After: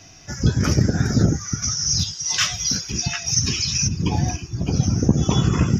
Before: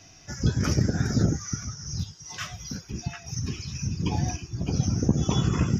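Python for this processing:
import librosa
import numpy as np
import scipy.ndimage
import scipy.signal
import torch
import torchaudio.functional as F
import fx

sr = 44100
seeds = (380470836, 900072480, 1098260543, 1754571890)

y = fx.peak_eq(x, sr, hz=4900.0, db=13.0, octaves=2.7, at=(1.62, 3.87), fade=0.02)
y = y * librosa.db_to_amplitude(5.5)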